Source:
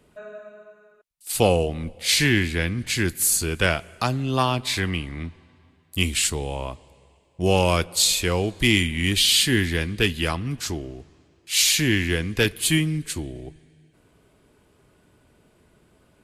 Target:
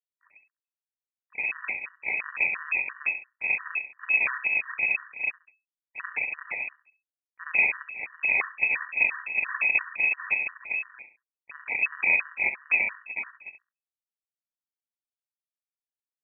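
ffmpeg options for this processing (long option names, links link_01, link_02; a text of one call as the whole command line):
ffmpeg -i in.wav -af "afftfilt=real='re':imag='-im':win_size=2048:overlap=0.75,highpass=frequency=110:poles=1,equalizer=frequency=360:width=7.3:gain=-8,alimiter=limit=-21dB:level=0:latency=1:release=53,dynaudnorm=framelen=350:gausssize=9:maxgain=7dB,aresample=8000,acrusher=samples=30:mix=1:aa=0.000001:lfo=1:lforange=48:lforate=2.7,aresample=44100,bandreject=frequency=50:width_type=h:width=6,bandreject=frequency=100:width_type=h:width=6,bandreject=frequency=150:width_type=h:width=6,aeval=exprs='sgn(val(0))*max(abs(val(0))-0.00891,0)':channel_layout=same,tremolo=f=5.1:d=0.32,aecho=1:1:68|136|204:0.299|0.0896|0.0269,lowpass=frequency=2200:width_type=q:width=0.5098,lowpass=frequency=2200:width_type=q:width=0.6013,lowpass=frequency=2200:width_type=q:width=0.9,lowpass=frequency=2200:width_type=q:width=2.563,afreqshift=-2600,afftfilt=real='re*gt(sin(2*PI*2.9*pts/sr)*(1-2*mod(floor(b*sr/1024/960),2)),0)':imag='im*gt(sin(2*PI*2.9*pts/sr)*(1-2*mod(floor(b*sr/1024/960),2)),0)':win_size=1024:overlap=0.75,volume=3dB" out.wav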